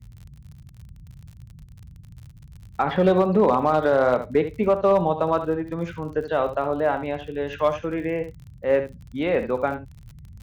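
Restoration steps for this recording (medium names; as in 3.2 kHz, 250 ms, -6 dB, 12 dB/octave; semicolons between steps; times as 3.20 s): clip repair -10.5 dBFS; de-click; noise print and reduce 21 dB; inverse comb 71 ms -10.5 dB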